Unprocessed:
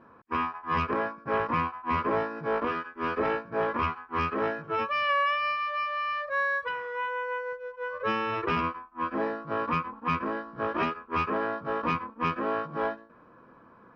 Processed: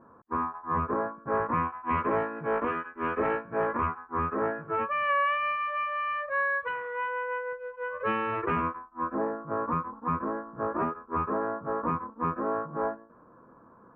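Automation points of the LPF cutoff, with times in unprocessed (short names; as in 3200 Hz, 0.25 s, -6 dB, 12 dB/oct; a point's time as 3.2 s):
LPF 24 dB/oct
1.16 s 1400 Hz
1.9 s 2400 Hz
3.46 s 2400 Hz
4.13 s 1500 Hz
5.33 s 2600 Hz
8.2 s 2600 Hz
9.11 s 1400 Hz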